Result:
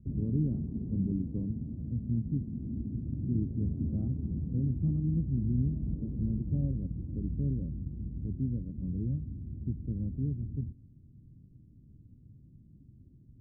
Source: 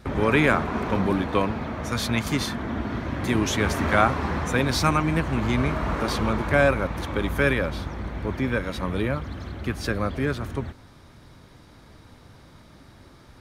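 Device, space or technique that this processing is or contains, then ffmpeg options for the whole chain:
the neighbour's flat through the wall: -af "lowpass=f=270:w=0.5412,lowpass=f=270:w=1.3066,equalizer=f=130:t=o:w=0.93:g=5.5,volume=-7dB"

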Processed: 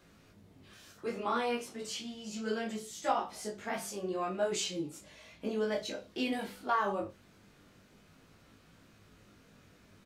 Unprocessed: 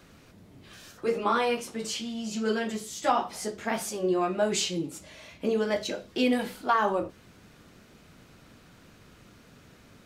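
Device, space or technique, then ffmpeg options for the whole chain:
double-tracked vocal: -filter_complex "[0:a]asplit=2[a][b];[b]adelay=30,volume=-10.5dB[c];[a][c]amix=inputs=2:normalize=0,flanger=delay=18.5:depth=2.4:speed=0.34,volume=-4dB"

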